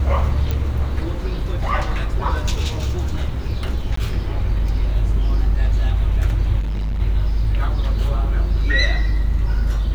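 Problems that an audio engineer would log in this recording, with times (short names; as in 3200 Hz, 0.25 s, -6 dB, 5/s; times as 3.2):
0.51 pop -10 dBFS
3.96–3.97 gap 14 ms
6.59–7.01 clipped -19.5 dBFS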